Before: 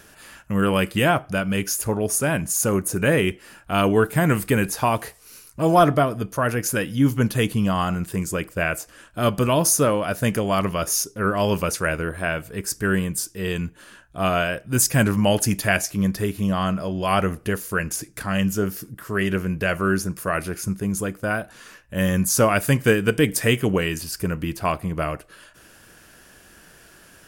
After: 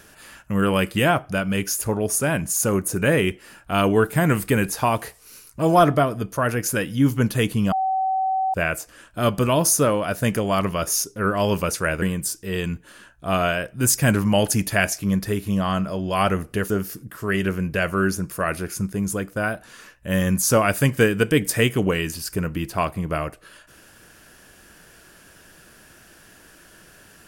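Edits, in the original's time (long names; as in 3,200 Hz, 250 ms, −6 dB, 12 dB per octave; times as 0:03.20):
0:07.72–0:08.54: beep over 762 Hz −19 dBFS
0:12.02–0:12.94: remove
0:17.62–0:18.57: remove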